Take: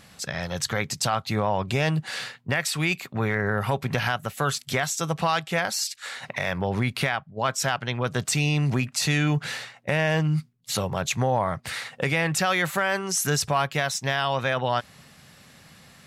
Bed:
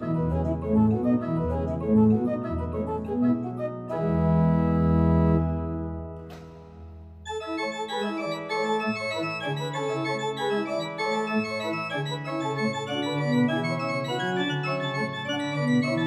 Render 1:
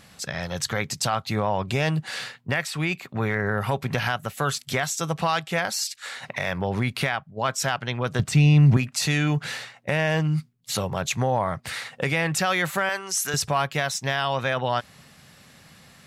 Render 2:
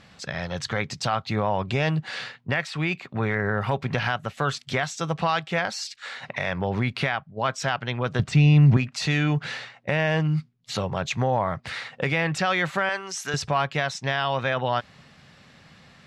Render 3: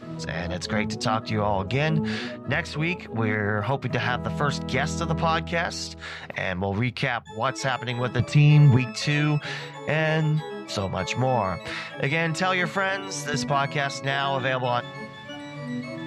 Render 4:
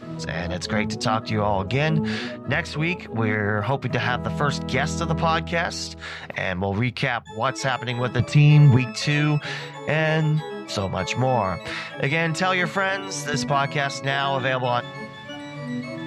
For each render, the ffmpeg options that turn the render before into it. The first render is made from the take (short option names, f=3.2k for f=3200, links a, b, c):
-filter_complex "[0:a]asettb=1/sr,asplit=3[a][b][c];[a]atrim=end=2.654[d];[b]atrim=start=2.65:end=3.09,asetpts=PTS-STARTPTS,afade=t=in:d=0.004:c=qsin,afade=t=out:st=0.436:d=0.004:c=qsin,highshelf=f=3.5k:g=-7.5[e];[c]atrim=start=3.086[f];[d][e]acrossfade=d=0.004:c1=hsin:c2=qsin[g];[g][f]acrossfade=d=0.004:c1=qsin:c2=hsin,asettb=1/sr,asplit=3[h][i][j];[h]atrim=end=8.194[k];[i]atrim=start=8.19:end=8.77,asetpts=PTS-STARTPTS,afade=t=in:d=0.004:c=qsin,afade=t=out:st=0.576:d=0.004:c=qsin,bass=f=250:g=10,treble=f=4k:g=-7[l];[j]atrim=start=8.766[m];[k][l]acrossfade=d=0.004:c1=hsin:c2=qsin[n];[n][m]acrossfade=d=0.004:c1=qsin:c2=hsin,asettb=1/sr,asplit=3[o][p][q];[o]atrim=end=12.894[r];[p]atrim=start=12.89:end=13.34,asetpts=PTS-STARTPTS,afade=t=in:d=0.004:c=qsin,afade=t=out:st=0.446:d=0.004:c=qsin,highpass=f=780:p=1[s];[q]atrim=start=13.336[t];[r][s]acrossfade=d=0.004:c1=hsin:c2=qsin[u];[u][t]acrossfade=d=0.004:c1=qsin:c2=hsin"
-af "lowpass=4.6k"
-filter_complex "[1:a]volume=-9dB[a];[0:a][a]amix=inputs=2:normalize=0"
-af "volume=2dB"